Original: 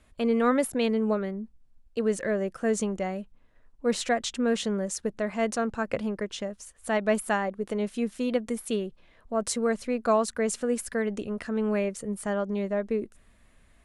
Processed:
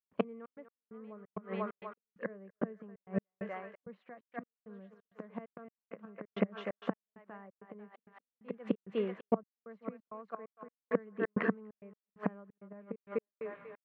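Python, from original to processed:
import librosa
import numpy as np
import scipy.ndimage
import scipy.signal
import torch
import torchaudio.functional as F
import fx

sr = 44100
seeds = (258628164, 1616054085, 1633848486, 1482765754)

p1 = x + fx.echo_thinned(x, sr, ms=246, feedback_pct=58, hz=630.0, wet_db=-6.0, dry=0)
p2 = fx.gate_flip(p1, sr, shuts_db=-21.0, range_db=-31)
p3 = fx.cabinet(p2, sr, low_hz=160.0, low_slope=24, high_hz=2300.0, hz=(190.0, 440.0, 1100.0), db=(8, 4, 7))
p4 = fx.step_gate(p3, sr, bpm=132, pattern='.xxx.x..xxx', floor_db=-60.0, edge_ms=4.5)
y = p4 * 10.0 ** (4.0 / 20.0)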